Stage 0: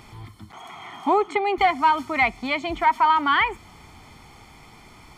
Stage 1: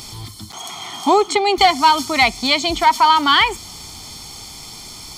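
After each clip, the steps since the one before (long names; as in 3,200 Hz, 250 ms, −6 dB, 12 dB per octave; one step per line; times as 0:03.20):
high shelf with overshoot 3,100 Hz +14 dB, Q 1.5
level +6.5 dB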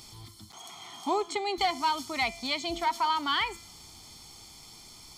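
tuned comb filter 340 Hz, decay 0.68 s, mix 60%
level −7 dB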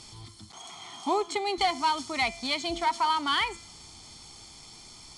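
level +1.5 dB
IMA ADPCM 88 kbit/s 22,050 Hz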